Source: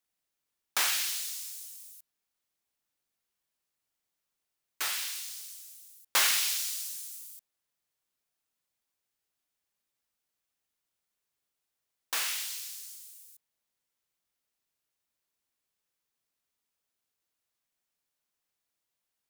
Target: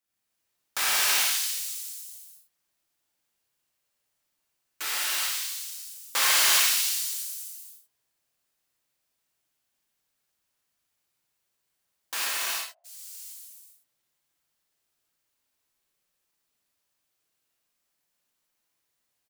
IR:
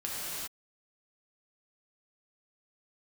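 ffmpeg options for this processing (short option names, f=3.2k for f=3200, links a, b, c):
-filter_complex "[0:a]asplit=3[a][b][c];[a]afade=t=out:st=12.24:d=0.02[d];[b]asuperpass=centerf=660:order=4:qfactor=6.6,afade=t=in:st=12.24:d=0.02,afade=t=out:st=12.84:d=0.02[e];[c]afade=t=in:st=12.84:d=0.02[f];[d][e][f]amix=inputs=3:normalize=0,aecho=1:1:56|70:0.447|0.224[g];[1:a]atrim=start_sample=2205[h];[g][h]afir=irnorm=-1:irlink=0"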